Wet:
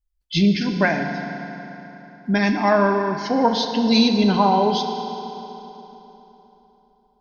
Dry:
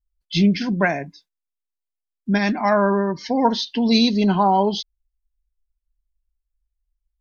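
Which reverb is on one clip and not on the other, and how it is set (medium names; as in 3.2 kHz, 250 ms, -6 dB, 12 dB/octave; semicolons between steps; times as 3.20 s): FDN reverb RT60 3.6 s, high-frequency decay 0.75×, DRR 4.5 dB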